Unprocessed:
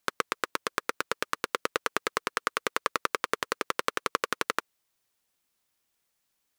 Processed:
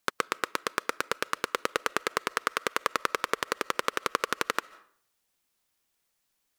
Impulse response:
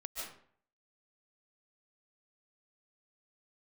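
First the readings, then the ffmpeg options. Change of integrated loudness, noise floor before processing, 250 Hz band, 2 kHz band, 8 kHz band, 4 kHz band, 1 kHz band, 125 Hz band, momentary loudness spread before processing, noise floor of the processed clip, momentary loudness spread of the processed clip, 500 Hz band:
+0.5 dB, -78 dBFS, +0.5 dB, +0.5 dB, +0.5 dB, +0.5 dB, +0.5 dB, +0.5 dB, 3 LU, -77 dBFS, 3 LU, +0.5 dB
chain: -filter_complex "[0:a]asplit=2[a][b];[b]asubboost=boost=6.5:cutoff=57[c];[1:a]atrim=start_sample=2205[d];[c][d]afir=irnorm=-1:irlink=0,volume=-19dB[e];[a][e]amix=inputs=2:normalize=0"

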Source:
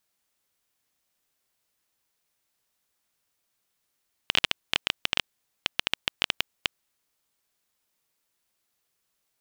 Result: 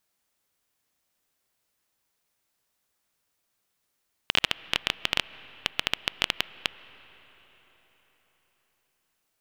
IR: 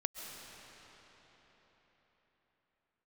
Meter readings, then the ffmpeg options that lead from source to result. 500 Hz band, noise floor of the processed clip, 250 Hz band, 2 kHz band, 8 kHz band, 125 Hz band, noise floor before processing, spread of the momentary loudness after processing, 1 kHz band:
+1.5 dB, -78 dBFS, +1.5 dB, +0.5 dB, 0.0 dB, +1.5 dB, -78 dBFS, 8 LU, +1.5 dB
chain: -filter_complex "[0:a]asplit=2[a][b];[1:a]atrim=start_sample=2205,lowpass=2.7k[c];[b][c]afir=irnorm=-1:irlink=0,volume=-12.5dB[d];[a][d]amix=inputs=2:normalize=0"

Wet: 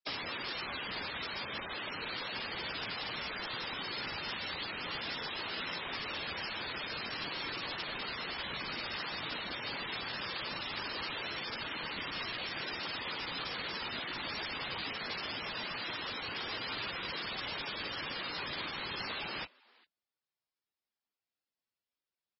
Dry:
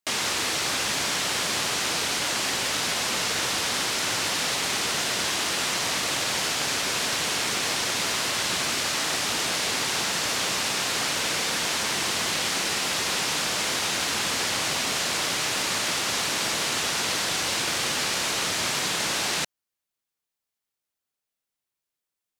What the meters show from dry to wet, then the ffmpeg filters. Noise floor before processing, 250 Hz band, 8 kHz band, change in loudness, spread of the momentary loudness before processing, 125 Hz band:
under -85 dBFS, -11.0 dB, under -40 dB, -13.5 dB, 0 LU, -11.0 dB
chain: -filter_complex "[0:a]highpass=f=84:w=0.5412,highpass=f=84:w=1.3066,adynamicequalizer=threshold=0.00282:dfrequency=690:dqfactor=6.5:tfrequency=690:tqfactor=6.5:attack=5:release=100:ratio=0.375:range=2.5:mode=cutabove:tftype=bell,acrossover=split=120|3000[a][b][c];[a]acompressor=threshold=-51dB:ratio=4[d];[b]acompressor=threshold=-34dB:ratio=4[e];[c]acompressor=threshold=-32dB:ratio=4[f];[d][e][f]amix=inputs=3:normalize=0,asplit=2[g][h];[h]adelay=400,highpass=300,lowpass=3.4k,asoftclip=type=hard:threshold=-26.5dB,volume=-25dB[i];[g][i]amix=inputs=2:normalize=0,afftfilt=real='hypot(re,im)*cos(2*PI*random(0))':imag='hypot(re,im)*sin(2*PI*random(1))':win_size=512:overlap=0.75" -ar 22050 -c:a libmp3lame -b:a 16k

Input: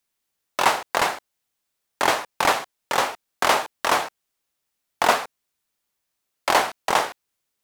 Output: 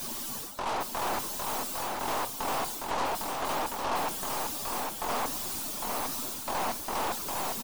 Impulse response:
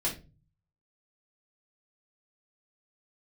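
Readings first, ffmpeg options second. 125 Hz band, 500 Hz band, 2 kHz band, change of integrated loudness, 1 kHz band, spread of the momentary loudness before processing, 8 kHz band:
-1.0 dB, -8.0 dB, -12.5 dB, -9.0 dB, -8.0 dB, 10 LU, -2.5 dB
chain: -filter_complex "[0:a]aeval=exprs='val(0)+0.5*0.0794*sgn(val(0))':c=same,afftdn=nr=12:nf=-32,equalizer=f=250:t=o:w=1:g=10,equalizer=f=1k:t=o:w=1:g=6,equalizer=f=2k:t=o:w=1:g=-9,areverse,acompressor=threshold=-23dB:ratio=12,areverse,aeval=exprs='(tanh(25.1*val(0)+0.4)-tanh(0.4))/25.1':c=same,asplit=2[a][b];[b]aecho=0:1:806:0.668[c];[a][c]amix=inputs=2:normalize=0"

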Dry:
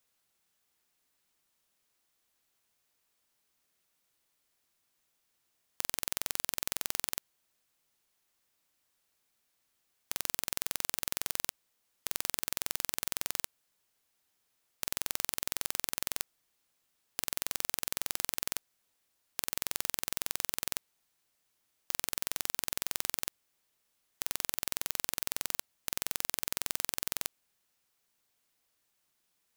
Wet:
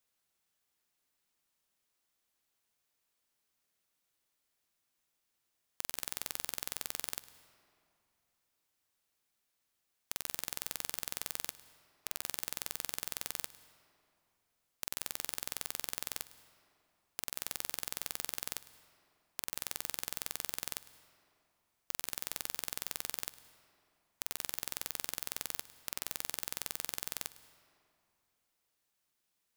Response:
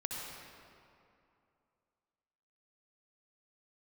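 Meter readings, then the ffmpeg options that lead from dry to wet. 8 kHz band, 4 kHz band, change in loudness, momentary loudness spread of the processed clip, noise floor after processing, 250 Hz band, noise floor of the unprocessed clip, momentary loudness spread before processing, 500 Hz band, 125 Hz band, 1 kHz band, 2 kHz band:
-4.5 dB, -4.5 dB, -4.5 dB, 6 LU, -82 dBFS, -4.0 dB, -78 dBFS, 5 LU, -4.5 dB, -3.5 dB, -4.5 dB, -4.5 dB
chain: -filter_complex "[0:a]asplit=2[a][b];[1:a]atrim=start_sample=2205,adelay=105[c];[b][c]afir=irnorm=-1:irlink=0,volume=-17dB[d];[a][d]amix=inputs=2:normalize=0,volume=-4.5dB"

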